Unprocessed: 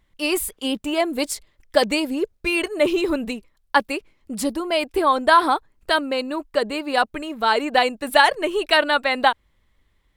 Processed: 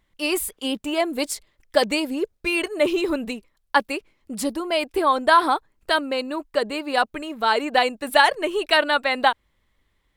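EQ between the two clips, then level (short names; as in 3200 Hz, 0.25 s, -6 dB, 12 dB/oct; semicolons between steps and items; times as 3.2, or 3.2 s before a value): low shelf 140 Hz -4.5 dB; -1.0 dB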